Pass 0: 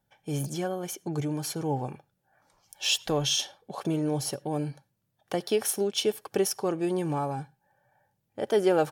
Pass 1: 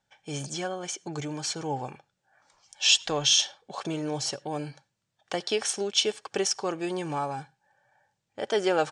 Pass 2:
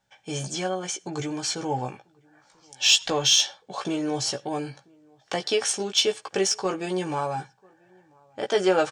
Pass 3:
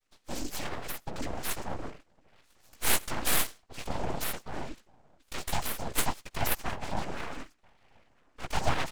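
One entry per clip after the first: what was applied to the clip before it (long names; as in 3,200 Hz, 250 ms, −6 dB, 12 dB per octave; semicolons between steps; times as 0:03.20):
Butterworth low-pass 8,300 Hz 48 dB per octave; tilt shelving filter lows −6 dB, about 690 Hz
double-tracking delay 16 ms −5 dB; slap from a distant wall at 170 metres, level −29 dB; in parallel at −9.5 dB: soft clipping −20.5 dBFS, distortion −11 dB
phaser with its sweep stopped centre 2,800 Hz, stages 6; cochlear-implant simulation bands 8; full-wave rectification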